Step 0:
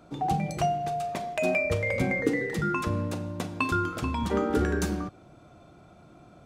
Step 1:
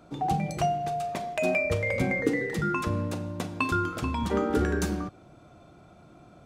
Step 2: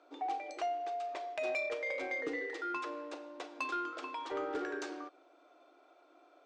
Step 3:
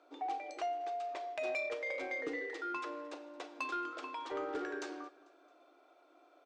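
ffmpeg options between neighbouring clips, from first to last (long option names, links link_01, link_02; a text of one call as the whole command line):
ffmpeg -i in.wav -af anull out.wav
ffmpeg -i in.wav -filter_complex "[0:a]acrossover=split=330 6000:gain=0.224 1 0.112[link_01][link_02][link_03];[link_01][link_02][link_03]amix=inputs=3:normalize=0,afftfilt=real='re*between(b*sr/4096,260,9100)':imag='im*between(b*sr/4096,260,9100)':win_size=4096:overlap=0.75,asoftclip=type=tanh:threshold=-22dB,volume=-6.5dB" out.wav
ffmpeg -i in.wav -af "aecho=1:1:222|444|666:0.0708|0.0368|0.0191,volume=-1.5dB" out.wav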